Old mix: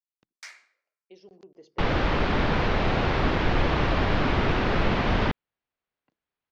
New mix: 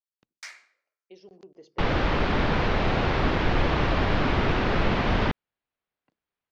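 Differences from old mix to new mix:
speech: send on; first sound: send +8.5 dB

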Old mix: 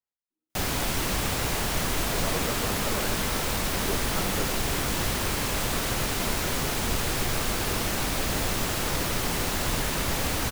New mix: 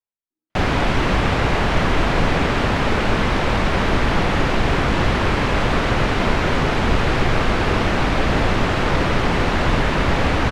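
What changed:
background +11.0 dB; master: add low-pass 2.5 kHz 12 dB/octave

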